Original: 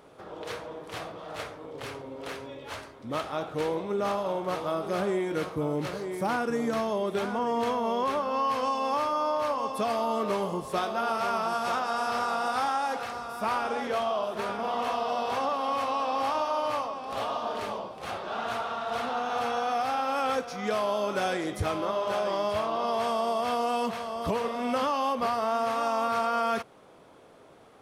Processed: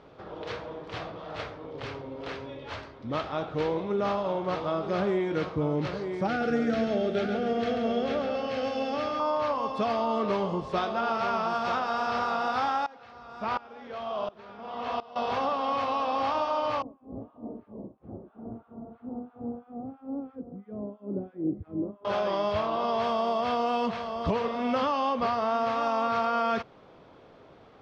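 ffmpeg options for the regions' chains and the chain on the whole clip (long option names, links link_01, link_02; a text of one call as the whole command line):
ffmpeg -i in.wav -filter_complex "[0:a]asettb=1/sr,asplit=3[link_01][link_02][link_03];[link_01]atrim=end=6.274[link_04];[link_02]atrim=start=6.27:end=9.2,asetpts=PTS-STARTPTS,afade=type=in:duration=0.004:curve=qsin,afade=type=out:start_time=2.926:duration=0.004:curve=qsin,asuperstop=centerf=1000:order=4:qfactor=2.2,aecho=1:1:138|276|414|552|690|828:0.473|0.232|0.114|0.0557|0.0273|0.0134,atrim=end_sample=129213[link_05];[link_03]atrim=start=9.196[link_06];[link_04][link_05]acrossfade=duration=0.004:curve1=hsin:curve2=qsin[link_07];[link_07][link_06]acrossfade=duration=0.004:curve1=qsin:curve2=hsin,asettb=1/sr,asplit=3[link_08][link_09][link_10];[link_08]atrim=end=12.864[link_11];[link_09]atrim=start=12.86:end=15.16,asetpts=PTS-STARTPTS,afade=type=in:duration=0.004:curve=qsin,afade=type=out:start_time=2.296:duration=0.004:curve=qsin,lowpass=7400,aeval=exprs='val(0)*pow(10,-21*if(lt(mod(-1.4*n/s,1),2*abs(-1.4)/1000),1-mod(-1.4*n/s,1)/(2*abs(-1.4)/1000),(mod(-1.4*n/s,1)-2*abs(-1.4)/1000)/(1-2*abs(-1.4)/1000))/20)':channel_layout=same[link_12];[link_10]atrim=start=15.156[link_13];[link_11][link_12]acrossfade=duration=0.004:curve1=hsin:curve2=qsin[link_14];[link_14][link_13]acrossfade=duration=0.004:curve1=qsin:curve2=hsin,asettb=1/sr,asplit=3[link_15][link_16][link_17];[link_15]atrim=end=16.824[link_18];[link_16]atrim=start=16.82:end=22.05,asetpts=PTS-STARTPTS,afade=type=in:duration=0.004:curve=qsin,afade=type=out:start_time=5.226:duration=0.004:curve=qsin,acrossover=split=1200[link_19][link_20];[link_19]aeval=exprs='val(0)*(1-1/2+1/2*cos(2*PI*3*n/s))':channel_layout=same[link_21];[link_20]aeval=exprs='val(0)*(1-1/2-1/2*cos(2*PI*3*n/s))':channel_layout=same[link_22];[link_21][link_22]amix=inputs=2:normalize=0,lowpass=frequency=290:width_type=q:width=2.2[link_23];[link_17]atrim=start=22.046[link_24];[link_18][link_23]acrossfade=duration=0.004:curve1=hsin:curve2=qsin[link_25];[link_25][link_24]acrossfade=duration=0.004:curve1=qsin:curve2=hsin,lowpass=frequency=5100:width=0.5412,lowpass=frequency=5100:width=1.3066,lowshelf=frequency=160:gain=7" out.wav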